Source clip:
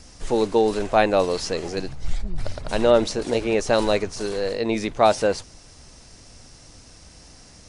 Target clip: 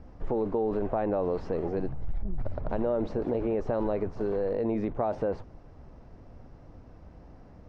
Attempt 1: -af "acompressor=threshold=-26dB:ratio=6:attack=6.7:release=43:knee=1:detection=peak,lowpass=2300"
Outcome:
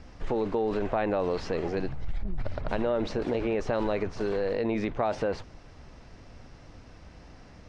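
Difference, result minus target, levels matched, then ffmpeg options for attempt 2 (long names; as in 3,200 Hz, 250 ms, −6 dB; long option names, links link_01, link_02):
2,000 Hz band +9.0 dB
-af "acompressor=threshold=-26dB:ratio=6:attack=6.7:release=43:knee=1:detection=peak,lowpass=950"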